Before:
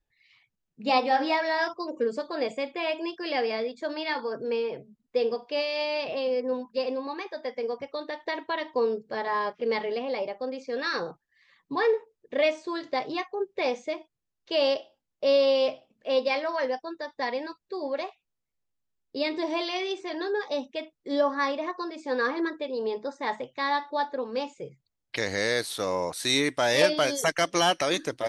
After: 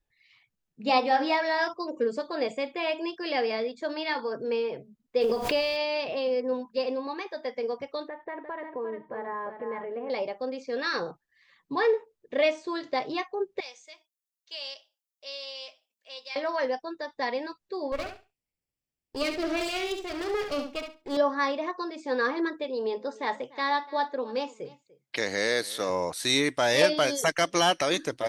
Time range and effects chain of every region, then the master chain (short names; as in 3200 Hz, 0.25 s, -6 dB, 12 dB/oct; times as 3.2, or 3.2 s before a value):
5.2–5.76 transient shaper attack +4 dB, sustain +10 dB + added noise pink -53 dBFS + backwards sustainer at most 66 dB/s
8.08–10.1 LPF 1900 Hz 24 dB/oct + compressor 2:1, threshold -37 dBFS + echo 0.35 s -7.5 dB
13.6–16.36 HPF 390 Hz 6 dB/oct + differentiator
17.92–21.17 minimum comb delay 0.38 ms + feedback echo 69 ms, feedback 18%, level -7 dB
22.64–25.9 HPF 170 Hz + echo 0.294 s -20.5 dB
whole clip: dry